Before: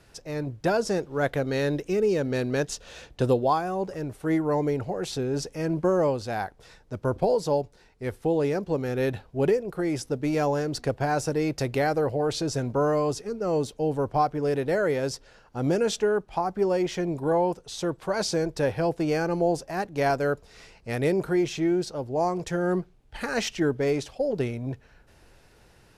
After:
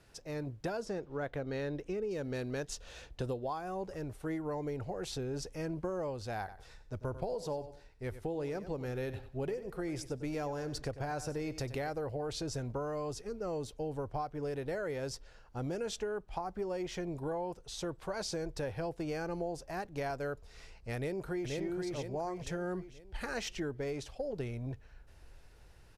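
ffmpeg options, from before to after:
-filter_complex "[0:a]asettb=1/sr,asplit=3[a][b][c];[a]atrim=end=0.854[d];[b]atrim=start=0.85:end=2.11,asetpts=PTS-STARTPTS,afade=t=in:d=0.004:c=qsin,afade=t=out:st=1.256:d=0.004:c=qsin,lowpass=f=3k:p=1[e];[c]atrim=start=2.106[f];[d][e]acrossfade=d=0.004:c1=hsin:c2=qsin[g];[g][f]acrossfade=d=0.004:c1=qsin:c2=hsin,asettb=1/sr,asplit=3[h][i][j];[h]atrim=end=6.394[k];[i]atrim=start=6.39:end=11.9,asetpts=PTS-STARTPTS,afade=t=in:d=0.004:c=qsin,afade=t=out:st=5.506:d=0.004:c=qsin,aecho=1:1:94|188|282:0.188|0.0452|0.0108,atrim=end_sample=242991[l];[j]atrim=start=11.896[m];[k][l]acrossfade=d=0.004:c1=hsin:c2=qsin[n];[n][m]acrossfade=d=0.004:c1=qsin:c2=hsin,asplit=2[o][p];[p]afade=t=in:st=20.96:d=0.01,afade=t=out:st=21.54:d=0.01,aecho=0:1:480|960|1440|1920|2400:0.707946|0.283178|0.113271|0.0453085|0.0181234[q];[o][q]amix=inputs=2:normalize=0,asubboost=boost=3:cutoff=95,acompressor=threshold=-28dB:ratio=4,volume=-6.5dB"

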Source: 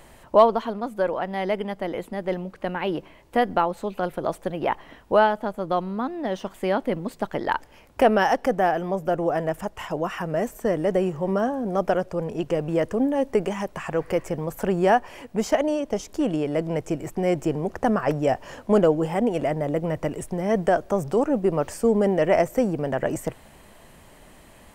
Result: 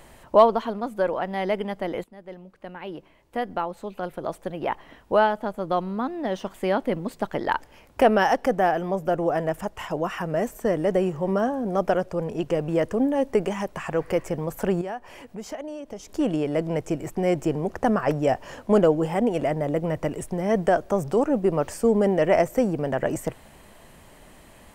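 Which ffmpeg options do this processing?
-filter_complex "[0:a]asettb=1/sr,asplit=3[a][b][c];[a]atrim=end=14.814[d];[b]atrim=start=14.81:end=16.15,asetpts=PTS-STARTPTS,afade=t=in:d=0.004:c=qsin,afade=t=out:st=1.336:d=0.004:c=qsin,acompressor=threshold=-41dB:ratio=2:attack=3.2:release=140:knee=1:detection=peak[e];[c]atrim=start=16.146[f];[d][e]acrossfade=d=0.004:c1=hsin:c2=qsin[g];[g][f]acrossfade=d=0.004:c1=qsin:c2=hsin,asplit=2[h][i];[h]atrim=end=2.04,asetpts=PTS-STARTPTS,afade=t=out:st=2.036:d=0.004:c=hsin:silence=0.149624[j];[i]atrim=start=2.04,asetpts=PTS-STARTPTS,afade=t=in:d=3.86:silence=0.149624[k];[j][k]concat=n=2:v=0:a=1"

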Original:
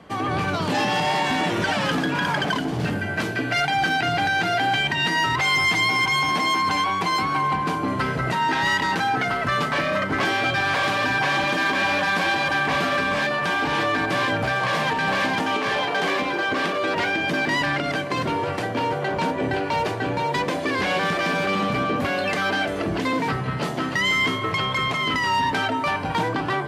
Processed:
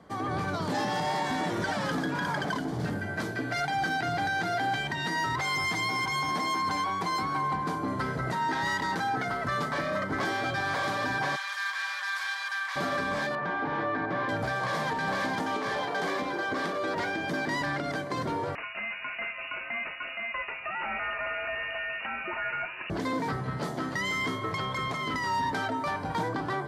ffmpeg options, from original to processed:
-filter_complex "[0:a]asplit=3[a][b][c];[a]afade=t=out:st=11.35:d=0.02[d];[b]highpass=f=1.2k:w=0.5412,highpass=f=1.2k:w=1.3066,afade=t=in:st=11.35:d=0.02,afade=t=out:st=12.75:d=0.02[e];[c]afade=t=in:st=12.75:d=0.02[f];[d][e][f]amix=inputs=3:normalize=0,asettb=1/sr,asplit=3[g][h][i];[g]atrim=end=13.354[j];[h]atrim=start=13.35:end=14.29,asetpts=PTS-STARTPTS,afade=t=in:d=0.004:c=qsin,afade=t=out:st=0.936:d=0.004:c=qsin,highpass=100,lowpass=2.2k[k];[i]atrim=start=14.286[l];[j][k]acrossfade=d=0.004:c1=hsin:c2=qsin[m];[m][l]acrossfade=d=0.004:c1=qsin:c2=hsin,asettb=1/sr,asplit=3[n][o][p];[n]atrim=end=18.554[q];[o]atrim=start=18.55:end=22.9,asetpts=PTS-STARTPTS,afade=t=in:d=0.004:c=qsin,afade=t=out:st=4.346:d=0.004:c=qsin,lowpass=f=2.6k:t=q:w=0.5098,lowpass=f=2.6k:t=q:w=0.6013,lowpass=f=2.6k:t=q:w=0.9,lowpass=f=2.6k:t=q:w=2.563,afreqshift=-3000[r];[p]atrim=start=22.896[s];[q][r]acrossfade=d=0.004:c1=hsin:c2=qsin[t];[t][s]acrossfade=d=0.004:c1=qsin:c2=hsin,equalizer=f=2.7k:t=o:w=0.46:g=-11.5,volume=-6.5dB"

